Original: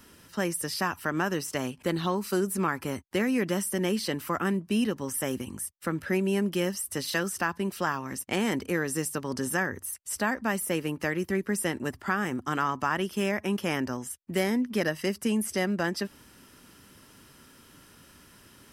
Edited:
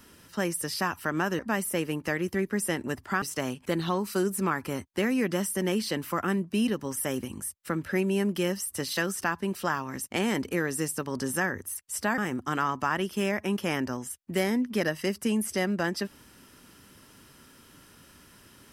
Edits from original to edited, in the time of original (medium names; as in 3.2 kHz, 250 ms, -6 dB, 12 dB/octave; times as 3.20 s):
10.35–12.18 s: move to 1.39 s